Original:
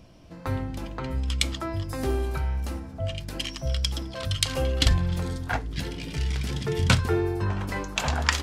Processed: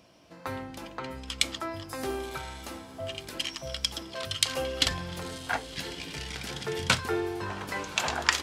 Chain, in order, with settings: high-pass 500 Hz 6 dB/octave; echo that smears into a reverb 1070 ms, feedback 47%, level -15.5 dB

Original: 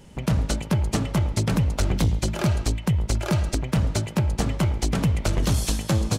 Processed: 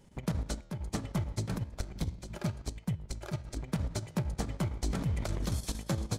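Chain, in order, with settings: peaking EQ 2.8 kHz -6.5 dB 0.21 oct; 1.57–3.53 s: level held to a coarse grid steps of 10 dB; transient shaper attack +3 dB, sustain -3 dB; square tremolo 8.7 Hz, depth 60%, duty 75%; 0.61–1.05 s: fade in equal-power; flange 0.34 Hz, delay 9.3 ms, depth 8.2 ms, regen -90%; 4.80–5.54 s: decay stretcher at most 32 dB/s; trim -6.5 dB

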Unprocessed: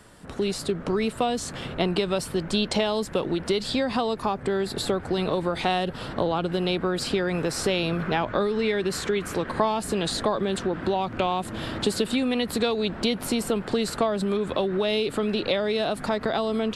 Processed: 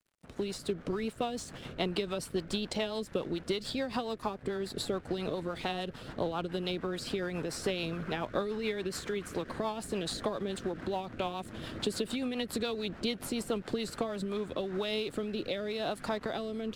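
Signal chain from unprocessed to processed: harmonic-percussive split percussive +3 dB; crossover distortion -43.5 dBFS; rotary cabinet horn 7 Hz, later 0.85 Hz, at 13.83 s; trim -7.5 dB

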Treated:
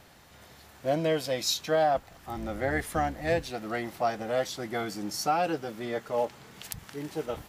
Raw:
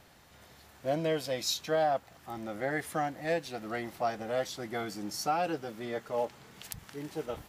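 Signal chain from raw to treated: 1.94–3.51 s: octave divider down 2 oct, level -2 dB; trim +3.5 dB

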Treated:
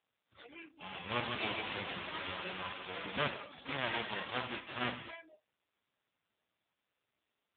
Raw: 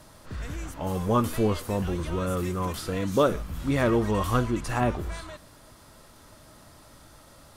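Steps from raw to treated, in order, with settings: formants flattened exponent 0.1; 1.07–3.29 s: bouncing-ball echo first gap 150 ms, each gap 0.7×, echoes 5; spring tank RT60 1.1 s, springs 45/49/57 ms, chirp 45 ms, DRR 10 dB; spectral noise reduction 26 dB; trim -6 dB; AMR-NB 5.9 kbps 8 kHz

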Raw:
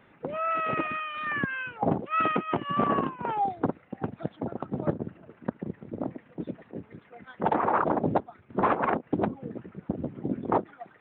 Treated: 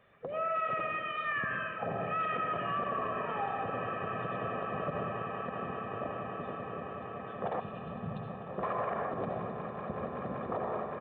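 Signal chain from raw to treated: comb 1.7 ms, depth 64%; on a send at -3 dB: reverberation RT60 1.3 s, pre-delay 63 ms; on the sum: time-frequency box 7.60–8.50 s, 240–2400 Hz -29 dB; tone controls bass -3 dB, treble +1 dB; echo with a slow build-up 190 ms, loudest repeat 8, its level -16 dB; peak limiter -18 dBFS, peak gain reduction 9 dB; trim -7 dB

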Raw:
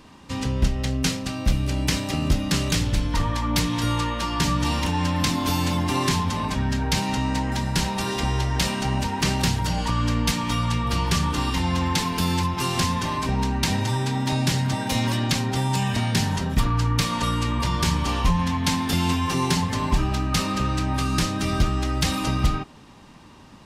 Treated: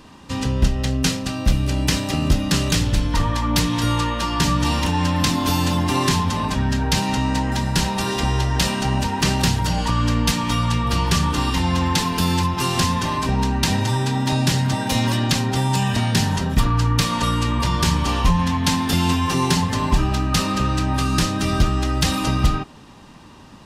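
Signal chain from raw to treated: band-stop 2.2 kHz, Q 16; trim +3.5 dB

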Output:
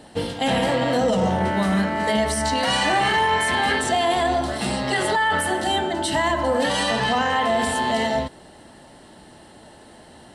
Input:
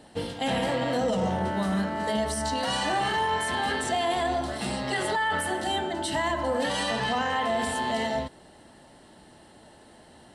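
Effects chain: 1.40–3.79 s: peaking EQ 2.2 kHz +7 dB 0.45 oct; trim +6 dB

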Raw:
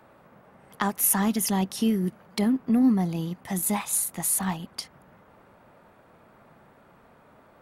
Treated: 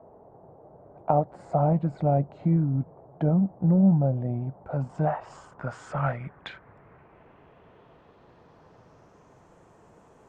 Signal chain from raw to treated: low-pass sweep 950 Hz -> 10 kHz, 3.24–7.09 s; speed mistake 45 rpm record played at 33 rpm

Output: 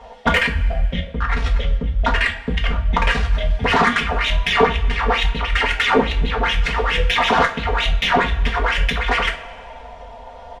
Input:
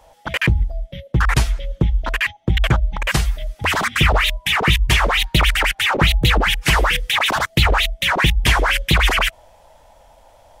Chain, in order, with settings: compressor with a negative ratio -23 dBFS, ratio -1; low-pass 3.1 kHz 12 dB/octave; comb 4.3 ms, depth 88%; Chebyshev shaper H 8 -27 dB, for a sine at -4.5 dBFS; two-slope reverb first 0.29 s, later 1.9 s, from -19 dB, DRR 1 dB; trim +1.5 dB

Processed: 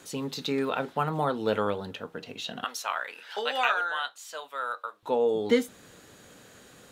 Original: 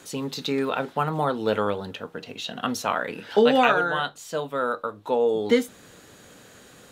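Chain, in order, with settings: 2.64–5.03 s: high-pass 950 Hz 12 dB/octave; trim -3 dB

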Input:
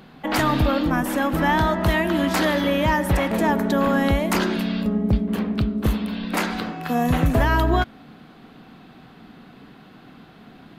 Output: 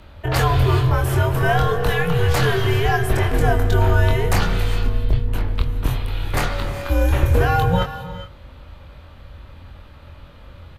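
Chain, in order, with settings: high-pass 76 Hz; peaking EQ 250 Hz +11.5 dB 0.27 oct; frequency shift -180 Hz; doubling 23 ms -5 dB; gated-style reverb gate 440 ms rising, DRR 11 dB

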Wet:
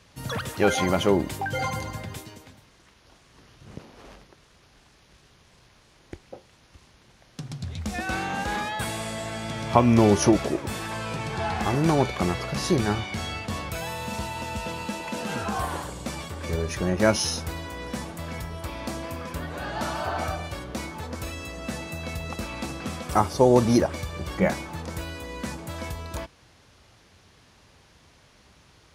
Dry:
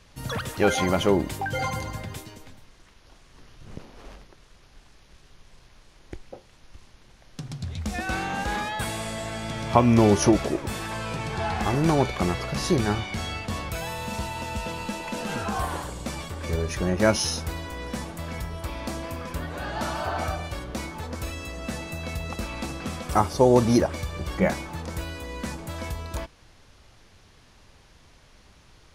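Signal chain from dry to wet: high-pass 65 Hz

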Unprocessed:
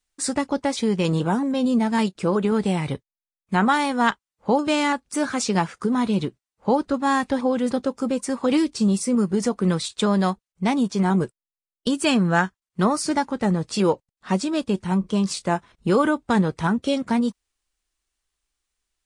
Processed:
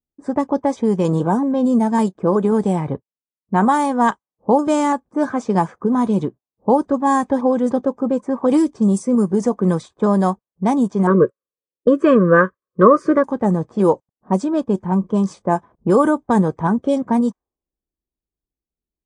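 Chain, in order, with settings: 11.07–13.24 s: FFT filter 250 Hz 0 dB, 550 Hz +13 dB, 790 Hz -25 dB, 1.1 kHz +10 dB, 2 kHz +5 dB, 9.5 kHz -29 dB; level-controlled noise filter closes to 300 Hz, open at -15.5 dBFS; high-order bell 3 kHz -13 dB; comb of notches 1.4 kHz; trim +5.5 dB

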